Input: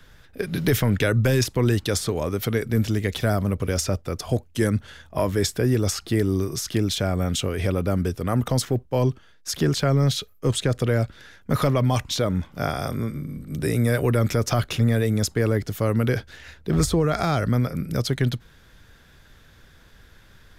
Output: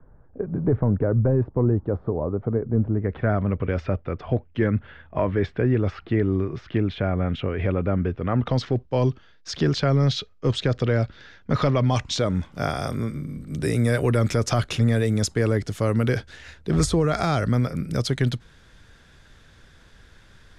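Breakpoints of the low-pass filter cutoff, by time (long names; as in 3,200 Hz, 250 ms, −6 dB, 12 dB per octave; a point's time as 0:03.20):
low-pass filter 24 dB per octave
0:02.89 1,000 Hz
0:03.38 2,600 Hz
0:08.15 2,600 Hz
0:08.79 5,400 Hz
0:11.72 5,400 Hz
0:12.48 10,000 Hz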